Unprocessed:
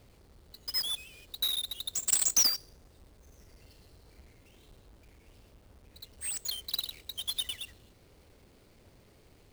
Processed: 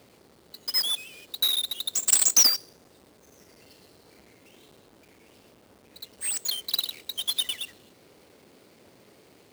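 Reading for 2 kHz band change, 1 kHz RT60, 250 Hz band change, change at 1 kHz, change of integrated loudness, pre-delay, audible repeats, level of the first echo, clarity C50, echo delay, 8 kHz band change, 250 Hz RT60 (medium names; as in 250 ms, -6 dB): +6.5 dB, no reverb, +6.0 dB, +7.0 dB, +6.5 dB, no reverb, no echo, no echo, no reverb, no echo, +6.5 dB, no reverb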